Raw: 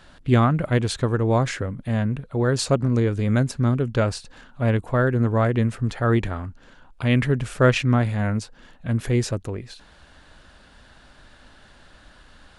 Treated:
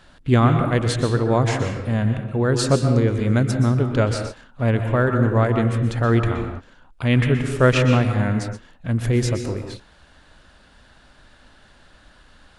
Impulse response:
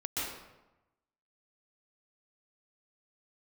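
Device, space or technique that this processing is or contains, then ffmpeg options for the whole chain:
keyed gated reverb: -filter_complex "[0:a]asplit=3[a][b][c];[1:a]atrim=start_sample=2205[d];[b][d]afir=irnorm=-1:irlink=0[e];[c]apad=whole_len=555013[f];[e][f]sidechaingate=range=-33dB:threshold=-41dB:ratio=16:detection=peak,volume=-7.5dB[g];[a][g]amix=inputs=2:normalize=0,volume=-1dB"

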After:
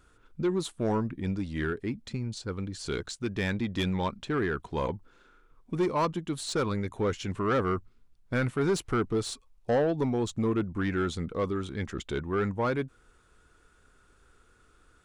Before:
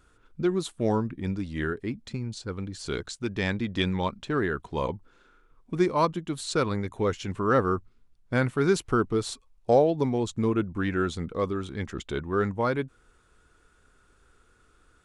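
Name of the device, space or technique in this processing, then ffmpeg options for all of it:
saturation between pre-emphasis and de-emphasis: -af "highshelf=f=2.9k:g=8.5,asoftclip=type=tanh:threshold=-20dB,highshelf=f=2.9k:g=-8.5"

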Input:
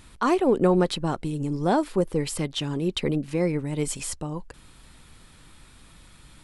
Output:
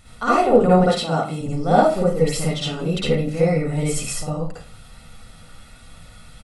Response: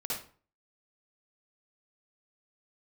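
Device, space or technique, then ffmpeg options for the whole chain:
microphone above a desk: -filter_complex "[0:a]asettb=1/sr,asplit=3[a][b][c];[a]atrim=end=0.784[d];[b]atrim=start=0.78:end=1.41,asetpts=PTS-STARTPTS,afade=t=in:d=0.004:c=qsin,afade=t=out:st=0.626:d=0.004:c=qsin,highpass=180[e];[c]atrim=start=1.406[f];[d][e]acrossfade=d=0.004:c1=hsin:c2=qsin[g];[g][f]acrossfade=d=0.004:c1=qsin:c2=hsin,aecho=1:1:1.5:0.57[h];[1:a]atrim=start_sample=2205[i];[h][i]afir=irnorm=-1:irlink=0,volume=2dB"

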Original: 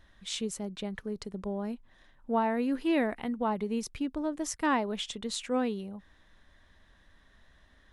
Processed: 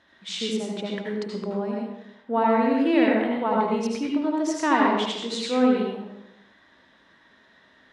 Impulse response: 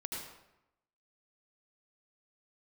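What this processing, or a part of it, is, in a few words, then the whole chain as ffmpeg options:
supermarket ceiling speaker: -filter_complex "[0:a]highpass=220,lowpass=5.4k[a];[1:a]atrim=start_sample=2205[b];[a][b]afir=irnorm=-1:irlink=0,volume=8dB"

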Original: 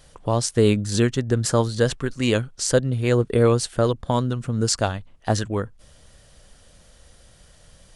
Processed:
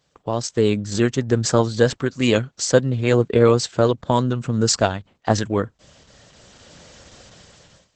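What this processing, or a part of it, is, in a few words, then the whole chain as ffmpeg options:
video call: -filter_complex "[0:a]asplit=3[a][b][c];[a]afade=t=out:st=2.44:d=0.02[d];[b]highpass=45,afade=t=in:st=2.44:d=0.02,afade=t=out:st=3.74:d=0.02[e];[c]afade=t=in:st=3.74:d=0.02[f];[d][e][f]amix=inputs=3:normalize=0,highpass=110,dynaudnorm=f=450:g=5:m=16dB,agate=range=-10dB:threshold=-49dB:ratio=16:detection=peak,volume=-1dB" -ar 48000 -c:a libopus -b:a 12k

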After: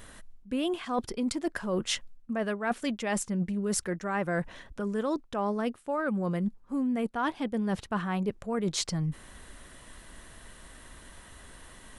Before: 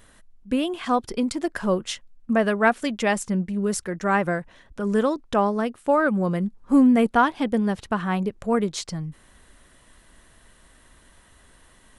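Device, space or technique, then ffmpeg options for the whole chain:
compression on the reversed sound: -af "areverse,acompressor=threshold=-31dB:ratio=16,areverse,volume=4.5dB"

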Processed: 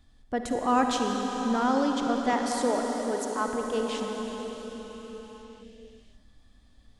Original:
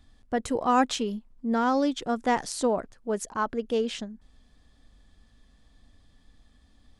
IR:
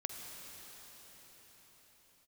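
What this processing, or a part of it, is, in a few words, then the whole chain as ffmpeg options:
cathedral: -filter_complex "[0:a]asettb=1/sr,asplit=3[a][b][c];[a]atrim=end=2.334[d];[b]atrim=start=2.33:end=3.48,asetpts=PTS-STARTPTS,afade=t=in:d=0.004:c=qsin,afade=t=out:st=1.146:d=0.004:c=qsin,highpass=f=230:w=0.5412,highpass=f=230:w=1.3066[e];[c]atrim=start=3.476[f];[d][e]acrossfade=d=0.004:c1=hsin:c2=qsin[g];[g][f]acrossfade=d=0.004:c1=qsin:c2=hsin[h];[1:a]atrim=start_sample=2205[i];[h][i]afir=irnorm=-1:irlink=0"

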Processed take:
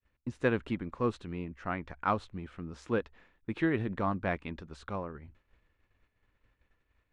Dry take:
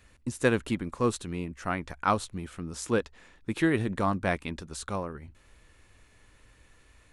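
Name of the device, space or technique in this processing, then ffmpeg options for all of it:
hearing-loss simulation: -af "lowpass=2.9k,agate=range=-33dB:threshold=-49dB:ratio=3:detection=peak,volume=-4dB"

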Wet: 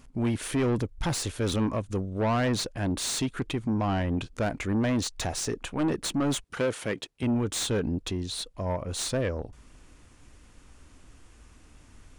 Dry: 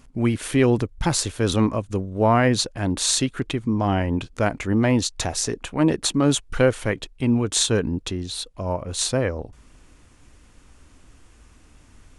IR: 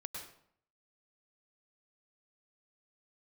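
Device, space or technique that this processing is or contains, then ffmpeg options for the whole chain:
saturation between pre-emphasis and de-emphasis: -filter_complex "[0:a]highshelf=f=5.1k:g=11,asoftclip=type=tanh:threshold=-19.5dB,highshelf=f=5.1k:g=-11,asettb=1/sr,asplit=3[a][b][c];[a]atrim=end=6.444[d];[b]atrim=start=6.44:end=7.23,asetpts=PTS-STARTPTS,afade=t=in:d=0.004:c=qsin,afade=t=out:st=0.786:d=0.004:c=qsin,highpass=150[e];[c]atrim=start=7.226[f];[d][e]acrossfade=d=0.004:c1=hsin:c2=qsin[g];[g][f]acrossfade=d=0.004:c1=qsin:c2=hsin,volume=-2dB"

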